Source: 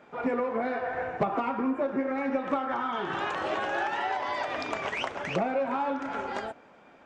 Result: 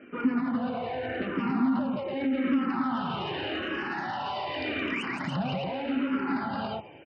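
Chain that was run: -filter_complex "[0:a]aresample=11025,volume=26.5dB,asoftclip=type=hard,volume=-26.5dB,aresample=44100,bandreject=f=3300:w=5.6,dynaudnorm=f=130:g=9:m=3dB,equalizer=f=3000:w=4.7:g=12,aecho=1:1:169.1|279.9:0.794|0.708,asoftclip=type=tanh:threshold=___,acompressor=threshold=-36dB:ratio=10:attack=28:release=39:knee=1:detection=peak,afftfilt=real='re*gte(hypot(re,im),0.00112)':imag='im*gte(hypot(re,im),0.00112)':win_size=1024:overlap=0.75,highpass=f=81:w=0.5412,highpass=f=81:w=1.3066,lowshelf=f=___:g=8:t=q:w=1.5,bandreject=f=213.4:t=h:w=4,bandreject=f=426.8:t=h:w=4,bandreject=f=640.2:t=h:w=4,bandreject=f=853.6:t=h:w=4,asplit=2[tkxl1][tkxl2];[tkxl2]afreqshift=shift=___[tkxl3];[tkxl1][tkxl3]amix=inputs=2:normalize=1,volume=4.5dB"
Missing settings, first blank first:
-17dB, 370, -0.84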